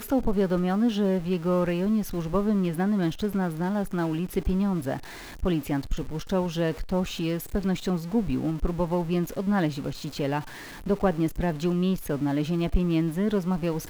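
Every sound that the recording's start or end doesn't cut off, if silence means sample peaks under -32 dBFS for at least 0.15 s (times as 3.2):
5.43–10.41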